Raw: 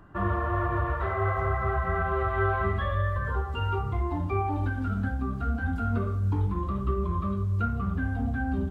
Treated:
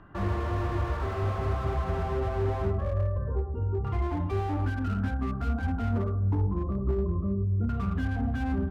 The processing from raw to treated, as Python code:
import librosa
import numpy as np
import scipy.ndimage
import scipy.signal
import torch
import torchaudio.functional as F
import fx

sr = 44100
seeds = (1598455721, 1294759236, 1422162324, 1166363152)

y = fx.filter_lfo_lowpass(x, sr, shape='saw_down', hz=0.26, low_hz=350.0, high_hz=3200.0, q=1.2)
y = fx.slew_limit(y, sr, full_power_hz=18.0)